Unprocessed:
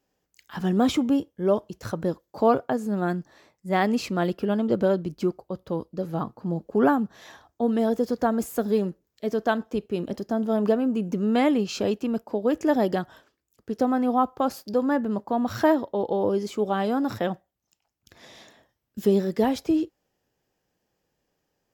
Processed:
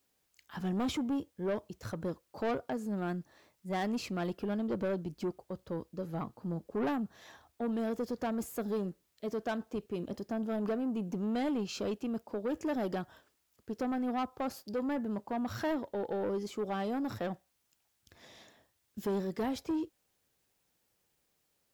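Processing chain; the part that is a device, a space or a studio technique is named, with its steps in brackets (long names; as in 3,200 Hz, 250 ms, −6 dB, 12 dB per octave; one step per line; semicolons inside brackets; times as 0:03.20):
open-reel tape (soft clipping −20.5 dBFS, distortion −11 dB; parametric band 80 Hz +4.5 dB; white noise bed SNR 42 dB)
level −7.5 dB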